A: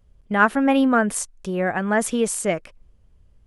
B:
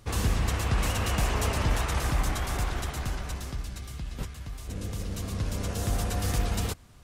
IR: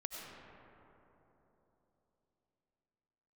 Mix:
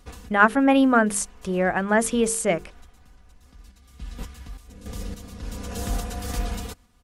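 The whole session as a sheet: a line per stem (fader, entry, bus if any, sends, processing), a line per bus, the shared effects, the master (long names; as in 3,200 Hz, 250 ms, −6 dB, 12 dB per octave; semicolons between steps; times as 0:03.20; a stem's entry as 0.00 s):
+0.5 dB, 0.00 s, no send, mains-hum notches 50/100/150/200/250/300/350/400/450 Hz
0.0 dB, 0.00 s, no send, notch filter 620 Hz, Q 12; comb filter 4.1 ms, depth 64%; sample-and-hold tremolo, depth 70%; automatic ducking −19 dB, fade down 0.20 s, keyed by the first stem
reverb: not used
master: no processing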